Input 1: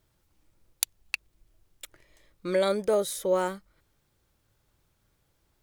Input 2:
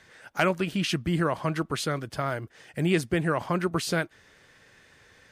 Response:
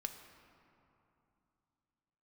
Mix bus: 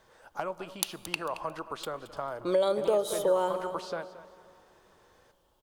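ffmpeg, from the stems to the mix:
-filter_complex "[0:a]equalizer=f=3100:w=3.5:g=11.5,volume=0.562,asplit=3[s0][s1][s2];[s1]volume=0.631[s3];[s2]volume=0.251[s4];[1:a]acrossover=split=500|5400[s5][s6][s7];[s5]acompressor=threshold=0.0112:ratio=4[s8];[s6]acompressor=threshold=0.0316:ratio=4[s9];[s7]acompressor=threshold=0.00141:ratio=4[s10];[s8][s9][s10]amix=inputs=3:normalize=0,volume=0.316,asplit=3[s11][s12][s13];[s12]volume=0.398[s14];[s13]volume=0.2[s15];[2:a]atrim=start_sample=2205[s16];[s3][s14]amix=inputs=2:normalize=0[s17];[s17][s16]afir=irnorm=-1:irlink=0[s18];[s4][s15]amix=inputs=2:normalize=0,aecho=0:1:223|446|669|892:1|0.28|0.0784|0.022[s19];[s0][s11][s18][s19]amix=inputs=4:normalize=0,equalizer=f=125:t=o:w=1:g=-4,equalizer=f=500:t=o:w=1:g=6,equalizer=f=1000:t=o:w=1:g=10,equalizer=f=2000:t=o:w=1:g=-9,acompressor=threshold=0.0631:ratio=3"

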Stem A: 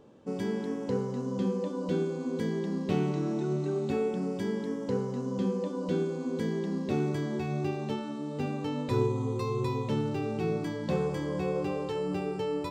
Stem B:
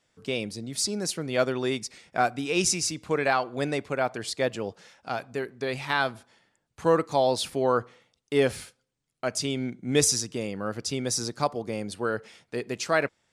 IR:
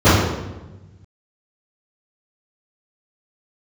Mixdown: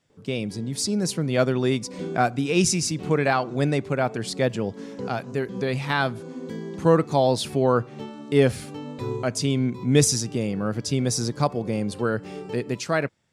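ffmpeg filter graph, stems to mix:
-filter_complex "[0:a]adelay=100,volume=0.531[s0];[1:a]equalizer=f=140:w=0.63:g=10,volume=0.794,asplit=2[s1][s2];[s2]apad=whole_len=564763[s3];[s0][s3]sidechaincompress=threshold=0.0112:ratio=4:attack=20:release=156[s4];[s4][s1]amix=inputs=2:normalize=0,dynaudnorm=f=160:g=9:m=1.41"

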